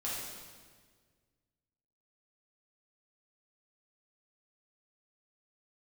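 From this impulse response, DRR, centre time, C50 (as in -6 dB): -7.5 dB, 95 ms, -1.0 dB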